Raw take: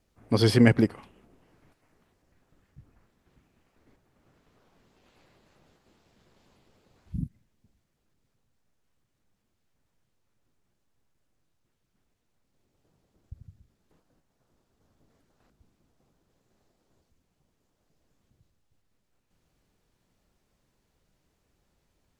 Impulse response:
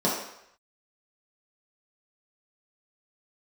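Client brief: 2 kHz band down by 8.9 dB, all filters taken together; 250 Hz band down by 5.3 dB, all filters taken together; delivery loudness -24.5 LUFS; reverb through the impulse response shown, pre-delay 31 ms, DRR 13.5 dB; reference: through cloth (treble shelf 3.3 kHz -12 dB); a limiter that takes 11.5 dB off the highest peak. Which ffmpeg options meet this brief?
-filter_complex "[0:a]equalizer=f=250:t=o:g=-6,equalizer=f=2000:t=o:g=-7.5,alimiter=limit=0.119:level=0:latency=1,asplit=2[s0][s1];[1:a]atrim=start_sample=2205,adelay=31[s2];[s1][s2]afir=irnorm=-1:irlink=0,volume=0.0447[s3];[s0][s3]amix=inputs=2:normalize=0,highshelf=f=3300:g=-12,volume=2.99"

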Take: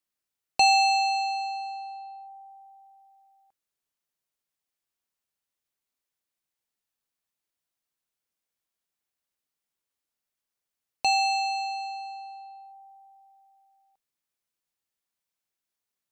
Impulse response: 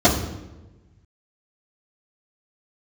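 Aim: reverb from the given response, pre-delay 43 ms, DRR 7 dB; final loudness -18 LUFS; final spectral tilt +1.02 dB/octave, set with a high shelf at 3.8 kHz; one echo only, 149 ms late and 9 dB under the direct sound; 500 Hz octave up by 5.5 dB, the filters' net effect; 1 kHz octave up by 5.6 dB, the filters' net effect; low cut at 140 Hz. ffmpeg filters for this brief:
-filter_complex "[0:a]highpass=140,equalizer=f=500:t=o:g=5,equalizer=f=1000:t=o:g=6,highshelf=f=3800:g=-5,aecho=1:1:149:0.355,asplit=2[s0][s1];[1:a]atrim=start_sample=2205,adelay=43[s2];[s1][s2]afir=irnorm=-1:irlink=0,volume=0.0335[s3];[s0][s3]amix=inputs=2:normalize=0,volume=2.11"

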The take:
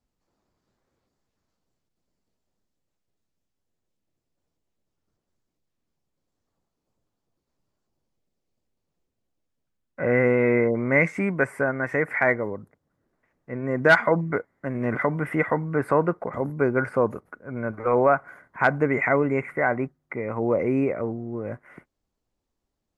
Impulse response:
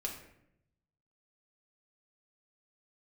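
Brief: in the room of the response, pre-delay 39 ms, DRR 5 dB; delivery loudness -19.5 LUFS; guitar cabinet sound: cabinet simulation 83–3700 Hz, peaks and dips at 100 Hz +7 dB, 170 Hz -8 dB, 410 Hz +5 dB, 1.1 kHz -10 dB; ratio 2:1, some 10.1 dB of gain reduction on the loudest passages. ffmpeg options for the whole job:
-filter_complex "[0:a]acompressor=threshold=0.0316:ratio=2,asplit=2[s0][s1];[1:a]atrim=start_sample=2205,adelay=39[s2];[s1][s2]afir=irnorm=-1:irlink=0,volume=0.531[s3];[s0][s3]amix=inputs=2:normalize=0,highpass=83,equalizer=f=100:t=q:w=4:g=7,equalizer=f=170:t=q:w=4:g=-8,equalizer=f=410:t=q:w=4:g=5,equalizer=f=1100:t=q:w=4:g=-10,lowpass=f=3700:w=0.5412,lowpass=f=3700:w=1.3066,volume=2.99"

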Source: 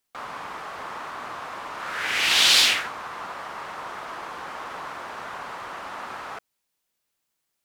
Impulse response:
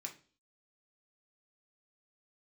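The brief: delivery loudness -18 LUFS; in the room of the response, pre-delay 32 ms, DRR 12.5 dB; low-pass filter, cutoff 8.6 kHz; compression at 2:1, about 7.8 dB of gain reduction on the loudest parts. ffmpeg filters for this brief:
-filter_complex "[0:a]lowpass=8600,acompressor=threshold=0.0398:ratio=2,asplit=2[s0][s1];[1:a]atrim=start_sample=2205,adelay=32[s2];[s1][s2]afir=irnorm=-1:irlink=0,volume=0.335[s3];[s0][s3]amix=inputs=2:normalize=0,volume=4.22"

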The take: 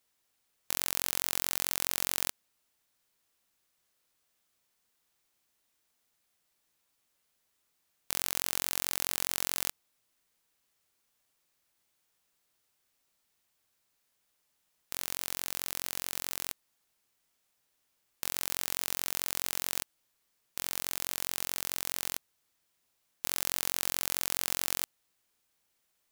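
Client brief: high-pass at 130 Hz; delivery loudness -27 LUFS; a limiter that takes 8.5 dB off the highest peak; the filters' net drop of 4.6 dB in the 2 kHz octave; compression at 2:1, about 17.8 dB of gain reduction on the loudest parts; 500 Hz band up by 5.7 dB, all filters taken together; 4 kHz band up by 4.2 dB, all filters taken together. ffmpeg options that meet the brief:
-af "highpass=130,equalizer=f=500:t=o:g=7.5,equalizer=f=2000:t=o:g=-9,equalizer=f=4000:t=o:g=7.5,acompressor=threshold=0.00141:ratio=2,volume=21.1,alimiter=limit=1:level=0:latency=1"

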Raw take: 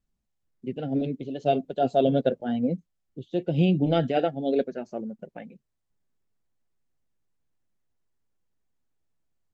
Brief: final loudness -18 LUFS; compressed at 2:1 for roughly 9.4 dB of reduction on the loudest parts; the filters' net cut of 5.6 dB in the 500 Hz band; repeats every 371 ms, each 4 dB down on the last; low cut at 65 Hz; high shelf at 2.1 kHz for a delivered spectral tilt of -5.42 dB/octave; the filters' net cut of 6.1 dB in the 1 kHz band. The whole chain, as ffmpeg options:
-af "highpass=65,equalizer=f=500:t=o:g=-5,equalizer=f=1000:t=o:g=-5.5,highshelf=f=2100:g=-7.5,acompressor=threshold=0.0158:ratio=2,aecho=1:1:371|742|1113|1484|1855|2226|2597|2968|3339:0.631|0.398|0.25|0.158|0.0994|0.0626|0.0394|0.0249|0.0157,volume=7.08"

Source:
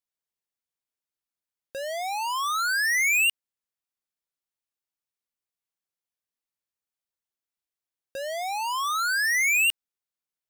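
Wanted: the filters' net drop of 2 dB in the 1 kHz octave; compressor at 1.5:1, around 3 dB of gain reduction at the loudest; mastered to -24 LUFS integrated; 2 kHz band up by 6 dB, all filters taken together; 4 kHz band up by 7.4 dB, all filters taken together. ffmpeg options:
-af "equalizer=f=1000:t=o:g=-5.5,equalizer=f=2000:t=o:g=6,equalizer=f=4000:t=o:g=8.5,acompressor=threshold=0.0794:ratio=1.5,volume=0.668"

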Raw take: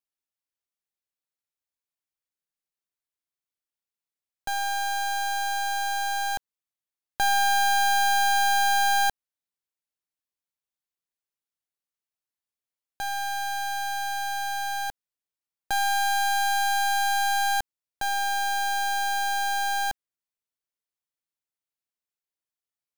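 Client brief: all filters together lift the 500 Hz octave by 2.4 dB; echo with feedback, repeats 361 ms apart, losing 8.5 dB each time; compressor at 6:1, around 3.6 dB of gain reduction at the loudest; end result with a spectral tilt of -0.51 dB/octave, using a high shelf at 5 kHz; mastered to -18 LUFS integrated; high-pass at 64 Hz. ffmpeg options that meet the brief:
-af "highpass=64,equalizer=f=500:t=o:g=3.5,highshelf=f=5000:g=-7.5,acompressor=threshold=0.0562:ratio=6,aecho=1:1:361|722|1083|1444:0.376|0.143|0.0543|0.0206,volume=3.55"

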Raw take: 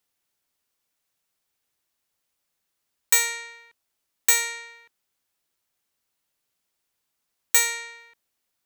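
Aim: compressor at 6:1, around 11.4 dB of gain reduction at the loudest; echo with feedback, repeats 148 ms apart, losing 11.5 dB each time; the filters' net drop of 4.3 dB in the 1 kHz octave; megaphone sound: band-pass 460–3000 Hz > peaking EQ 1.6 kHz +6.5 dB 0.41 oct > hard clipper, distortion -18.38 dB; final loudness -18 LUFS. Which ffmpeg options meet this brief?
-af "equalizer=f=1000:t=o:g=-8,acompressor=threshold=0.0501:ratio=6,highpass=460,lowpass=3000,equalizer=f=1600:t=o:w=0.41:g=6.5,aecho=1:1:148|296|444:0.266|0.0718|0.0194,asoftclip=type=hard:threshold=0.0398,volume=9.44"

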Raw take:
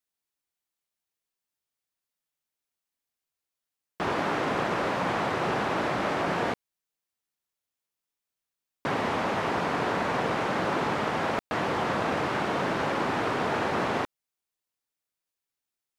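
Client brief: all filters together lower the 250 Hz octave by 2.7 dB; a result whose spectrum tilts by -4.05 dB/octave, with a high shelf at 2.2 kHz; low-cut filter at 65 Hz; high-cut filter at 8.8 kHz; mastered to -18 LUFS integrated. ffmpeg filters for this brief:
-af "highpass=65,lowpass=8800,equalizer=f=250:t=o:g=-3.5,highshelf=f=2200:g=-7.5,volume=3.98"

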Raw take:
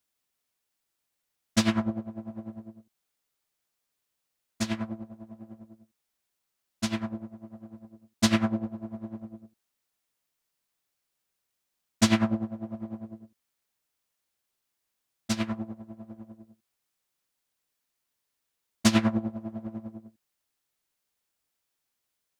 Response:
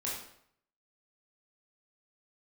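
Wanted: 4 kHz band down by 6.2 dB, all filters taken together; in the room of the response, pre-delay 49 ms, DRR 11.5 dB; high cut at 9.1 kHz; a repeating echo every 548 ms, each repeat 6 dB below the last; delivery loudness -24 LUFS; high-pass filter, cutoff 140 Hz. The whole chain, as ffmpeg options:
-filter_complex "[0:a]highpass=140,lowpass=9100,equalizer=f=4000:t=o:g=-8,aecho=1:1:548|1096|1644|2192|2740|3288:0.501|0.251|0.125|0.0626|0.0313|0.0157,asplit=2[s0][s1];[1:a]atrim=start_sample=2205,adelay=49[s2];[s1][s2]afir=irnorm=-1:irlink=0,volume=0.188[s3];[s0][s3]amix=inputs=2:normalize=0,volume=2.66"

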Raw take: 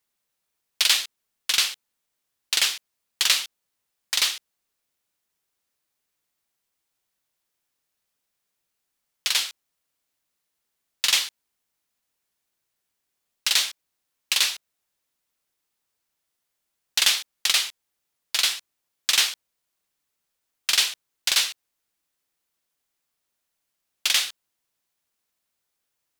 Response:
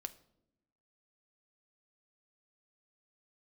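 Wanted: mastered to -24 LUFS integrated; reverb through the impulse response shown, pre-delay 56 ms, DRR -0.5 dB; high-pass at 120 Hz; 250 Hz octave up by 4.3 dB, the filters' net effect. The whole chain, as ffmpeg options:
-filter_complex "[0:a]highpass=120,equalizer=f=250:t=o:g=6,asplit=2[s0][s1];[1:a]atrim=start_sample=2205,adelay=56[s2];[s1][s2]afir=irnorm=-1:irlink=0,volume=1.5[s3];[s0][s3]amix=inputs=2:normalize=0,volume=0.596"

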